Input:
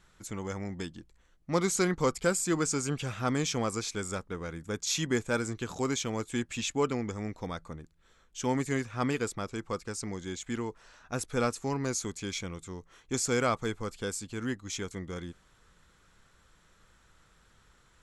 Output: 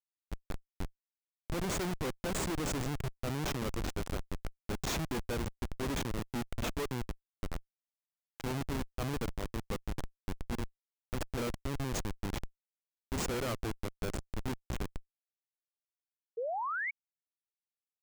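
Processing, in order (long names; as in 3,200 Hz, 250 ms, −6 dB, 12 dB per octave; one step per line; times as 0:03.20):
comparator with hysteresis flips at −28.5 dBFS
sound drawn into the spectrogram rise, 0:16.37–0:16.91, 440–2,300 Hz −35 dBFS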